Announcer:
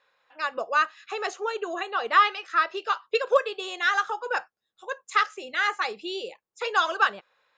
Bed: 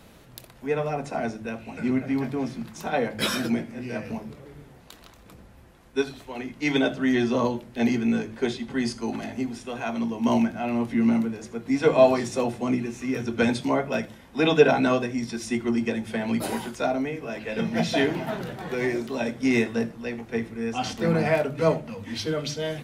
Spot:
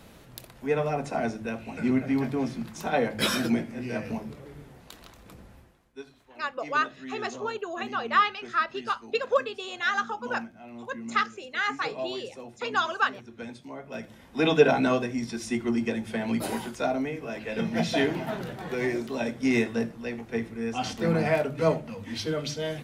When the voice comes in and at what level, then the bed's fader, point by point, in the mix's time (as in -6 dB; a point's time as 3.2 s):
6.00 s, -3.0 dB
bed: 5.55 s 0 dB
5.97 s -17.5 dB
13.74 s -17.5 dB
14.22 s -2 dB